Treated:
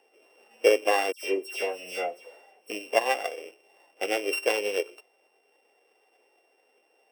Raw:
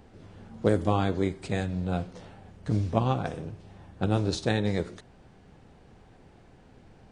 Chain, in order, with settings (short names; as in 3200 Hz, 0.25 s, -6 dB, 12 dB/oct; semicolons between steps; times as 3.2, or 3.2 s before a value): sample sorter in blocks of 16 samples; HPF 420 Hz 24 dB/oct; in parallel at +2.5 dB: compressor, threshold -35 dBFS, peak gain reduction 13.5 dB; 1.12–2.7 on the sum: dispersion lows, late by 0.11 s, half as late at 2500 Hz; spectral expander 1.5:1